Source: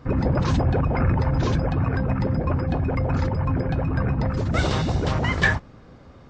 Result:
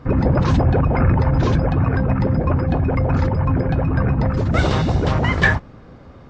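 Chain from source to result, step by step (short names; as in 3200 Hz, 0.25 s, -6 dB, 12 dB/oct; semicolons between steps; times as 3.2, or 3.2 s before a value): high shelf 4100 Hz -7.5 dB; gain +5 dB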